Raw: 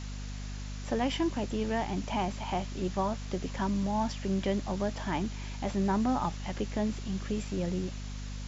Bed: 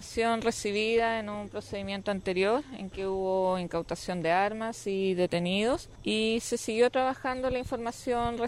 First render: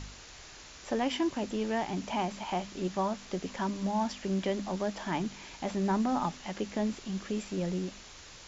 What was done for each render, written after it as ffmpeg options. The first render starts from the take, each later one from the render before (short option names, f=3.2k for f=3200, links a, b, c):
-af "bandreject=f=50:t=h:w=4,bandreject=f=100:t=h:w=4,bandreject=f=150:t=h:w=4,bandreject=f=200:t=h:w=4,bandreject=f=250:t=h:w=4"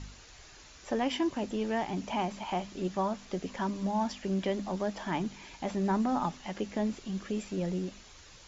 -af "afftdn=nr=6:nf=-50"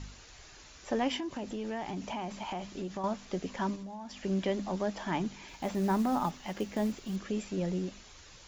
-filter_complex "[0:a]asettb=1/sr,asplit=3[a][b][c];[a]atrim=end=1.174[d];[b]atrim=start=1.17:end=3.04,asetpts=PTS-STARTPTS,afade=t=in:d=0.004:c=qsin,afade=t=out:st=1.866:d=0.004:c=qsin,acompressor=threshold=-33dB:ratio=6:attack=3.2:release=140:knee=1:detection=peak[e];[c]atrim=start=3.036[f];[d][e]acrossfade=d=0.004:c1=hsin:c2=qsin[g];[g][f]acrossfade=d=0.004:c1=qsin:c2=hsin,asettb=1/sr,asplit=3[h][i][j];[h]atrim=end=3.754[k];[i]atrim=start=3.75:end=4.19,asetpts=PTS-STARTPTS,afade=t=in:d=0.004:c=qsin,afade=t=out:st=0.436:d=0.004:c=qsin,acompressor=threshold=-41dB:ratio=5:attack=3.2:release=140:knee=1:detection=peak[l];[j]atrim=start=4.186[m];[k][l]acrossfade=d=0.004:c1=hsin:c2=qsin[n];[n][m]acrossfade=d=0.004:c1=qsin:c2=hsin,asettb=1/sr,asplit=3[o][p][q];[o]atrim=end=5.484[r];[p]atrim=start=5.48:end=7.16,asetpts=PTS-STARTPTS,afade=t=in:d=0.004:c=qsin,afade=t=out:st=1.676:d=0.004:c=qsin,acrusher=bits=6:mode=log:mix=0:aa=0.000001[s];[q]atrim=start=7.156[t];[r][s]acrossfade=d=0.004:c1=hsin:c2=qsin[u];[u][t]acrossfade=d=0.004:c1=qsin:c2=hsin"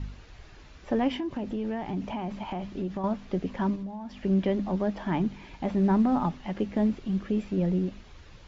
-af "lowpass=3.5k,lowshelf=f=360:g=9.5"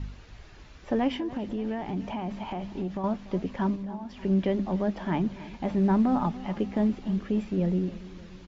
-af "aecho=1:1:289|578|867|1156|1445:0.133|0.0733|0.0403|0.0222|0.0122"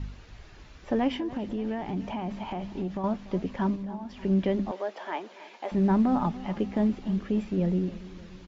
-filter_complex "[0:a]asettb=1/sr,asplit=3[a][b][c];[a]atrim=end=4.714[d];[b]atrim=start=4.71:end=5.72,asetpts=PTS-STARTPTS,afade=t=in:d=0.004:c=qsin,afade=t=out:st=1.006:d=0.004:c=qsin,highpass=f=430:w=0.5412,highpass=f=430:w=1.3066[e];[c]atrim=start=5.716[f];[d][e]acrossfade=d=0.004:c1=hsin:c2=qsin[g];[g][f]acrossfade=d=0.004:c1=qsin:c2=hsin"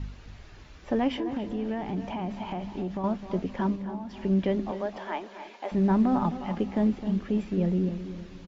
-filter_complex "[0:a]asplit=2[a][b];[b]adelay=260,lowpass=f=1.9k:p=1,volume=-11dB,asplit=2[c][d];[d]adelay=260,lowpass=f=1.9k:p=1,volume=0.32,asplit=2[e][f];[f]adelay=260,lowpass=f=1.9k:p=1,volume=0.32[g];[a][c][e][g]amix=inputs=4:normalize=0"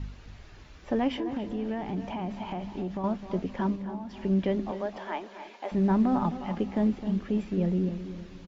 -af "volume=-1dB"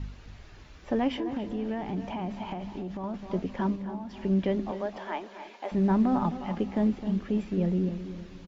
-filter_complex "[0:a]asettb=1/sr,asplit=3[a][b][c];[a]atrim=end=2.534[d];[b]atrim=start=2.53:end=3.14,asetpts=PTS-STARTPTS,afade=t=in:d=0.004:c=qsin,afade=t=out:st=0.606:d=0.004:c=qsin,acompressor=threshold=-32dB:ratio=3:attack=3.2:release=140:knee=1:detection=peak[e];[c]atrim=start=3.136[f];[d][e]acrossfade=d=0.004:c1=hsin:c2=qsin[g];[g][f]acrossfade=d=0.004:c1=qsin:c2=hsin"